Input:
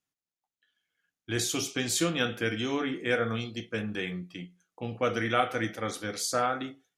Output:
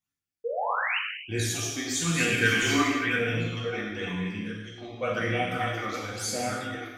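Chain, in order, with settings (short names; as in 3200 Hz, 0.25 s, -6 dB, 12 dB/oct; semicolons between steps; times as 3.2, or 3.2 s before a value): reverse delay 0.688 s, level -6 dB; 2.15–3.11 spectral gain 1000–3200 Hz +7 dB; 2.27–2.82 sample leveller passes 1; phaser stages 12, 0.98 Hz, lowest notch 150–1300 Hz; 0.44–0.99 painted sound rise 440–3100 Hz -31 dBFS; non-linear reverb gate 0.37 s falling, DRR -4.5 dB; gain -2.5 dB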